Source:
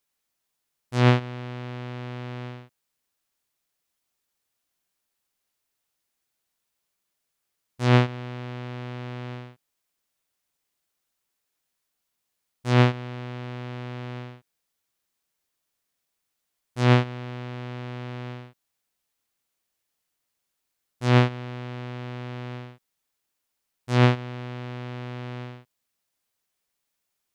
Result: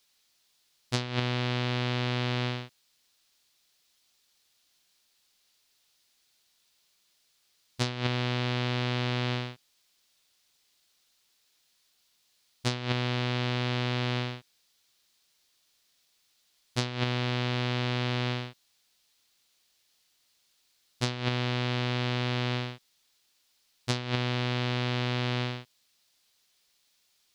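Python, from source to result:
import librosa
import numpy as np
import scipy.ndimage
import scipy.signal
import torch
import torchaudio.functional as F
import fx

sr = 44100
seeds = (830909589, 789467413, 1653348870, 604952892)

y = fx.over_compress(x, sr, threshold_db=-29.0, ratio=-1.0)
y = fx.peak_eq(y, sr, hz=4200.0, db=12.0, octaves=1.5)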